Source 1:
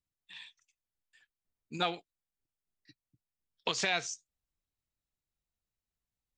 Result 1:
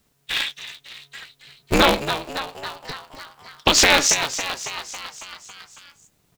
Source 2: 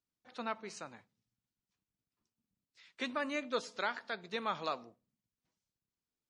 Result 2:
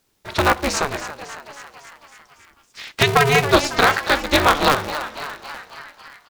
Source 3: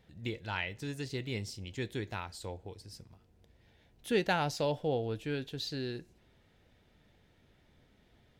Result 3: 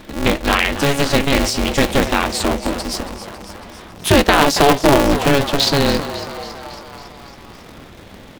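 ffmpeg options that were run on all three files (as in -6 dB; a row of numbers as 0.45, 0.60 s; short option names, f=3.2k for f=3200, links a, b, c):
-filter_complex "[0:a]acompressor=threshold=-43dB:ratio=1.5,asplit=8[a][b][c][d][e][f][g][h];[b]adelay=276,afreqshift=120,volume=-13dB[i];[c]adelay=552,afreqshift=240,volume=-16.9dB[j];[d]adelay=828,afreqshift=360,volume=-20.8dB[k];[e]adelay=1104,afreqshift=480,volume=-24.6dB[l];[f]adelay=1380,afreqshift=600,volume=-28.5dB[m];[g]adelay=1656,afreqshift=720,volume=-32.4dB[n];[h]adelay=1932,afreqshift=840,volume=-36.3dB[o];[a][i][j][k][l][m][n][o]amix=inputs=8:normalize=0,alimiter=level_in=26.5dB:limit=-1dB:release=50:level=0:latency=1,aeval=exprs='val(0)*sgn(sin(2*PI*140*n/s))':c=same,volume=-1dB"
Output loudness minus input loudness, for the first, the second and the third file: +15.0, +21.0, +20.0 LU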